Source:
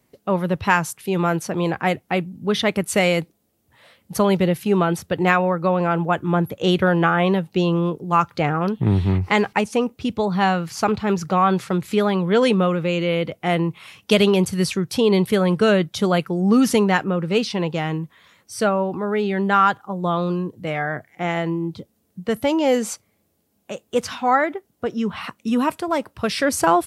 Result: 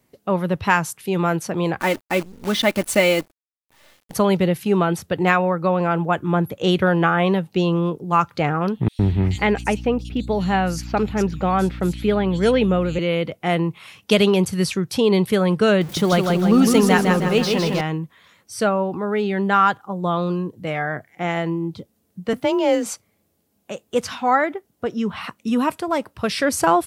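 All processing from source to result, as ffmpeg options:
ffmpeg -i in.wav -filter_complex "[0:a]asettb=1/sr,asplit=3[link_01][link_02][link_03];[link_01]atrim=end=1.804[link_04];[link_02]atrim=start=1.8:end=4.13,asetpts=PTS-STARTPTS,afade=type=in:duration=0.004:curve=qsin,afade=type=out:start_time=2.326:duration=0.004:curve=qsin,aecho=1:1:3.4:0.63,atrim=end_sample=102753,acrusher=bits=6:dc=4:mix=0:aa=0.000001[link_05];[link_03]atrim=start=4.126[link_06];[link_04][link_05]acrossfade=duration=0.004:curve1=hsin:curve2=qsin[link_07];[link_07][link_06]acrossfade=duration=0.004:curve1=qsin:curve2=hsin,asettb=1/sr,asplit=3[link_08][link_09][link_10];[link_08]atrim=end=8.884[link_11];[link_09]atrim=start=8.88:end=12.99,asetpts=PTS-STARTPTS,afade=type=in:duration=0.004:curve=qsin,afade=type=out:start_time=4.106:duration=0.004:curve=qsin,equalizer=frequency=1100:width_type=o:width=0.5:gain=-6.5,aeval=exprs='val(0)+0.0282*(sin(2*PI*60*n/s)+sin(2*PI*2*60*n/s)/2+sin(2*PI*3*60*n/s)/3+sin(2*PI*4*60*n/s)/4+sin(2*PI*5*60*n/s)/5)':channel_layout=same,acrossover=split=3700[link_12][link_13];[link_12]adelay=110[link_14];[link_14][link_13]amix=inputs=2:normalize=0,atrim=end_sample=181251[link_15];[link_10]atrim=start=12.986[link_16];[link_11][link_15]acrossfade=duration=0.004:curve1=hsin:curve2=qsin[link_17];[link_17][link_16]acrossfade=duration=0.004:curve1=qsin:curve2=hsin,asettb=1/sr,asplit=3[link_18][link_19][link_20];[link_18]atrim=end=15.814[link_21];[link_19]atrim=start=15.81:end=17.81,asetpts=PTS-STARTPTS,afade=type=in:duration=0.004:curve=qsin,afade=type=out:start_time=1.996:duration=0.004:curve=qsin,aeval=exprs='val(0)+0.5*0.0266*sgn(val(0))':channel_layout=same,aecho=1:1:157|314|471|628|785|942:0.631|0.309|0.151|0.0742|0.0364|0.0178,atrim=end_sample=88200[link_22];[link_20]atrim=start=17.806[link_23];[link_21][link_22]acrossfade=duration=0.004:curve1=hsin:curve2=qsin[link_24];[link_24][link_23]acrossfade=duration=0.004:curve1=qsin:curve2=hsin,asettb=1/sr,asplit=3[link_25][link_26][link_27];[link_25]atrim=end=22.334[link_28];[link_26]atrim=start=22.33:end=22.86,asetpts=PTS-STARTPTS,afade=type=in:duration=0.004:curve=qsin,afade=type=out:start_time=0.526:duration=0.004:curve=qsin,adynamicsmooth=sensitivity=1.5:basefreq=6300,afreqshift=30,acrusher=bits=8:mix=0:aa=0.5[link_29];[link_27]atrim=start=22.856[link_30];[link_28][link_29]acrossfade=duration=0.004:curve1=hsin:curve2=qsin[link_31];[link_31][link_30]acrossfade=duration=0.004:curve1=qsin:curve2=hsin" out.wav

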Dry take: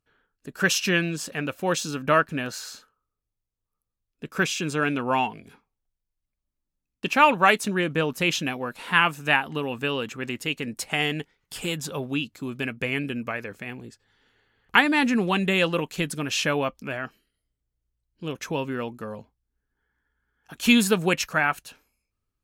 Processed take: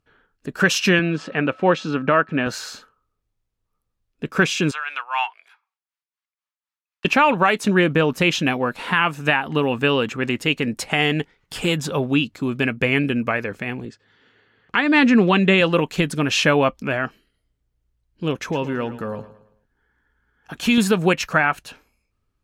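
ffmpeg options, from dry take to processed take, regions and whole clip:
ffmpeg -i in.wav -filter_complex "[0:a]asettb=1/sr,asplit=3[link_01][link_02][link_03];[link_01]atrim=end=0.994[link_04];[link_02]atrim=start=0.99:end=2.47,asetpts=PTS-STARTPTS,afade=type=in:duration=0.004:curve=qsin,afade=type=out:start_time=1.476:duration=0.004:curve=qsin,highpass=140,lowpass=3100,aeval=exprs='val(0)+0.00178*sin(2*PI*1300*n/s)':channel_layout=same[link_05];[link_03]atrim=start=2.466[link_06];[link_04][link_05]acrossfade=duration=0.004:curve1=hsin:curve2=qsin[link_07];[link_07][link_06]acrossfade=duration=0.004:curve1=qsin:curve2=hsin,asettb=1/sr,asplit=3[link_08][link_09][link_10];[link_08]atrim=end=4.714[link_11];[link_09]atrim=start=4.71:end=7.05,asetpts=PTS-STARTPTS,afade=type=in:duration=0.004:curve=qsin,afade=type=out:start_time=2.336:duration=0.004:curve=qsin,highpass=frequency=1000:width=0.5412,highpass=frequency=1000:width=1.3066,highshelf=frequency=6100:gain=-7.5,tremolo=f=4:d=0.73[link_12];[link_10]atrim=start=7.046[link_13];[link_11][link_12]acrossfade=duration=0.004:curve1=hsin:curve2=qsin[link_14];[link_14][link_13]acrossfade=duration=0.004:curve1=qsin:curve2=hsin,asettb=1/sr,asplit=3[link_15][link_16][link_17];[link_15]atrim=end=13.854[link_18];[link_16]atrim=start=13.85:end=15.61,asetpts=PTS-STARTPTS,afade=type=in:duration=0.004:curve=qsin,afade=type=out:start_time=1.756:duration=0.004:curve=qsin,highpass=110,lowpass=6500,equalizer=frequency=840:width_type=o:width=0.22:gain=-6.5[link_19];[link_17]atrim=start=15.606[link_20];[link_18][link_19]acrossfade=duration=0.004:curve1=hsin:curve2=qsin[link_21];[link_21][link_20]acrossfade=duration=0.004:curve1=qsin:curve2=hsin,asettb=1/sr,asplit=3[link_22][link_23][link_24];[link_22]atrim=end=18.394[link_25];[link_23]atrim=start=18.39:end=20.78,asetpts=PTS-STARTPTS,afade=type=in:duration=0.004:curve=qsin,afade=type=out:start_time=2.386:duration=0.004:curve=qsin,acompressor=threshold=-35dB:ratio=1.5:attack=3.2:release=140:knee=1:detection=peak,aecho=1:1:110|220|330|440:0.188|0.0772|0.0317|0.013,atrim=end_sample=105399[link_26];[link_24]atrim=start=20.776[link_27];[link_25][link_26]acrossfade=duration=0.004:curve1=hsin:curve2=qsin[link_28];[link_28][link_27]acrossfade=duration=0.004:curve1=qsin:curve2=hsin,lowpass=frequency=3500:poles=1,alimiter=limit=-14.5dB:level=0:latency=1:release=203,volume=9dB" out.wav

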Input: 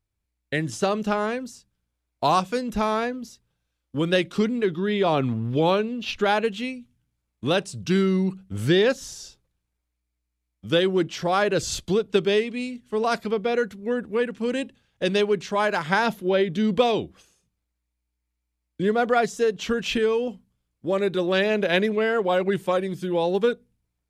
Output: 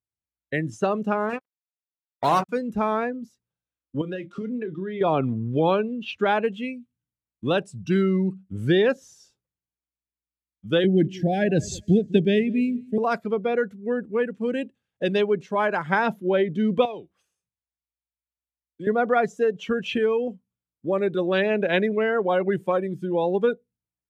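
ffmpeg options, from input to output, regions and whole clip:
ffmpeg -i in.wav -filter_complex "[0:a]asettb=1/sr,asplit=3[link_01][link_02][link_03];[link_01]atrim=end=1.294[link_04];[link_02]atrim=start=1.29:end=2.49,asetpts=PTS-STARTPTS,afade=type=in:duration=0.004:curve=qsin,afade=type=out:start_time=1.196:duration=0.004:curve=qsin,bandreject=frequency=75:width_type=h:width=4,bandreject=frequency=150:width_type=h:width=4,bandreject=frequency=225:width_type=h:width=4,bandreject=frequency=300:width_type=h:width=4,bandreject=frequency=375:width_type=h:width=4,bandreject=frequency=450:width_type=h:width=4,bandreject=frequency=525:width_type=h:width=4,bandreject=frequency=600:width_type=h:width=4,bandreject=frequency=675:width_type=h:width=4,bandreject=frequency=750:width_type=h:width=4,bandreject=frequency=825:width_type=h:width=4,bandreject=frequency=900:width_type=h:width=4,bandreject=frequency=975:width_type=h:width=4,acrusher=bits=3:mix=0:aa=0.5[link_05];[link_03]atrim=start=2.486[link_06];[link_04][link_05]acrossfade=duration=0.004:curve1=hsin:curve2=qsin[link_07];[link_07][link_06]acrossfade=duration=0.004:curve1=qsin:curve2=hsin,asettb=1/sr,asplit=3[link_08][link_09][link_10];[link_08]atrim=end=4.014[link_11];[link_09]atrim=start=4.01:end=5.01,asetpts=PTS-STARTPTS,afade=type=in:duration=0.004:curve=qsin,afade=type=out:start_time=0.996:duration=0.004:curve=qsin,highpass=130,lowpass=7200,acompressor=threshold=-26dB:ratio=16:attack=3.2:release=140:knee=1:detection=peak,asplit=2[link_12][link_13];[link_13]adelay=32,volume=-10.5dB[link_14];[link_12][link_14]amix=inputs=2:normalize=0,atrim=end_sample=44100[link_15];[link_10]atrim=start=5.006[link_16];[link_11][link_15]acrossfade=duration=0.004:curve1=hsin:curve2=qsin[link_17];[link_17][link_16]acrossfade=duration=0.004:curve1=qsin:curve2=hsin,asettb=1/sr,asplit=3[link_18][link_19][link_20];[link_18]atrim=end=10.844[link_21];[link_19]atrim=start=10.84:end=12.98,asetpts=PTS-STARTPTS,afade=type=in:duration=0.004:curve=qsin,afade=type=out:start_time=2.136:duration=0.004:curve=qsin,asuperstop=centerf=1100:order=12:qfactor=1.4,lowshelf=frequency=320:width_type=q:width=1.5:gain=7,aecho=1:1:201|402|603:0.1|0.032|0.0102,atrim=end_sample=94374[link_22];[link_20]atrim=start=12.976[link_23];[link_21][link_22]acrossfade=duration=0.004:curve1=hsin:curve2=qsin[link_24];[link_24][link_23]acrossfade=duration=0.004:curve1=qsin:curve2=hsin,asettb=1/sr,asplit=3[link_25][link_26][link_27];[link_25]atrim=end=16.854[link_28];[link_26]atrim=start=16.85:end=18.87,asetpts=PTS-STARTPTS,afade=type=in:duration=0.004:curve=qsin,afade=type=out:start_time=2.016:duration=0.004:curve=qsin,equalizer=frequency=260:width=0.77:gain=-9,bandreject=frequency=6900:width=13,acrossover=split=160|2800[link_29][link_30][link_31];[link_29]acompressor=threshold=-55dB:ratio=4[link_32];[link_30]acompressor=threshold=-31dB:ratio=4[link_33];[link_31]acompressor=threshold=-44dB:ratio=4[link_34];[link_32][link_33][link_34]amix=inputs=3:normalize=0[link_35];[link_27]atrim=start=18.866[link_36];[link_28][link_35]acrossfade=duration=0.004:curve1=hsin:curve2=qsin[link_37];[link_37][link_36]acrossfade=duration=0.004:curve1=qsin:curve2=hsin,highpass=90,equalizer=frequency=4300:width=1.3:gain=-4.5,afftdn=noise_reduction=14:noise_floor=-33" out.wav

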